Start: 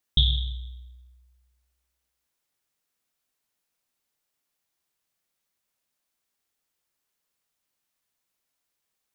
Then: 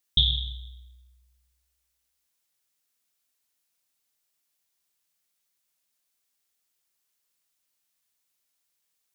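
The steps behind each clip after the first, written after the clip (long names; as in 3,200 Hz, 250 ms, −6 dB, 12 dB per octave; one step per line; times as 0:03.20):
high-shelf EQ 2,300 Hz +9 dB
level −4.5 dB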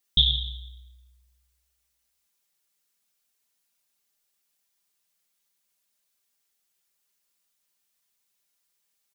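comb filter 5 ms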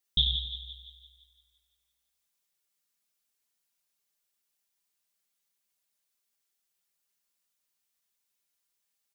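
echo with a time of its own for lows and highs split 1,100 Hz, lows 93 ms, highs 170 ms, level −11 dB
level −5.5 dB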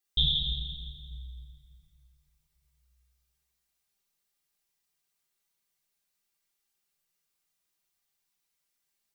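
rectangular room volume 2,300 cubic metres, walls mixed, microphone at 3.7 metres
level −4 dB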